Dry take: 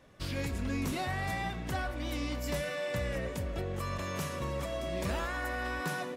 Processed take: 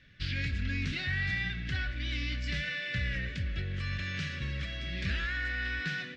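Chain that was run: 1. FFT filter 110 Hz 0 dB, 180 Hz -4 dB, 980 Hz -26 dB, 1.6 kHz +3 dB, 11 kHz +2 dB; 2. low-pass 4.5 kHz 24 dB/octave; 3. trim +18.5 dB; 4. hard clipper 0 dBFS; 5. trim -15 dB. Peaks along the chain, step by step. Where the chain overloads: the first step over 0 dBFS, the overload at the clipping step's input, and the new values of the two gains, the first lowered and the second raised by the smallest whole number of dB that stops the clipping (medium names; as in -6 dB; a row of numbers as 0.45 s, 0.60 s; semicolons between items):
-24.0 dBFS, -24.0 dBFS, -5.5 dBFS, -5.5 dBFS, -20.5 dBFS; nothing clips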